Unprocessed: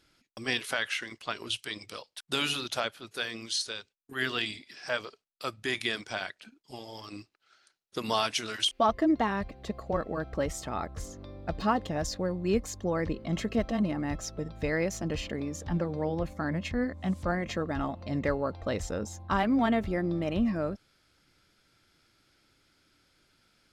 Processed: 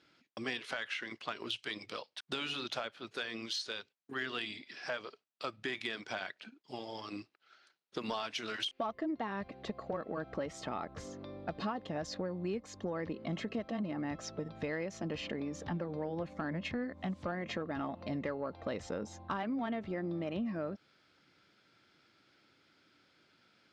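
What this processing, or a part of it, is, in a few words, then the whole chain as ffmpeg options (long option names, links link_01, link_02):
AM radio: -af "highpass=150,lowpass=4300,acompressor=threshold=-35dB:ratio=5,asoftclip=type=tanh:threshold=-24.5dB,volume=1dB"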